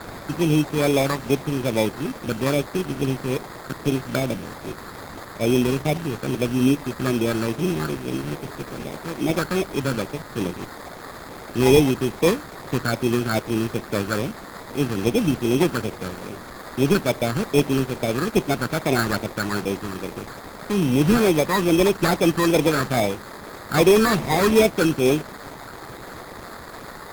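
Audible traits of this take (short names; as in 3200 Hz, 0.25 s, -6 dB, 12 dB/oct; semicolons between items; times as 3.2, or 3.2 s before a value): a quantiser's noise floor 6-bit, dither triangular; phasing stages 12, 2.4 Hz, lowest notch 640–1500 Hz; aliases and images of a low sample rate 2900 Hz, jitter 0%; Opus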